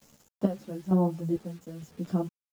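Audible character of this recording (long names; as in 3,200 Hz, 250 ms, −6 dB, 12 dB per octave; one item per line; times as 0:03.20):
chopped level 1.1 Hz, depth 65%, duty 50%
a quantiser's noise floor 10 bits, dither none
a shimmering, thickened sound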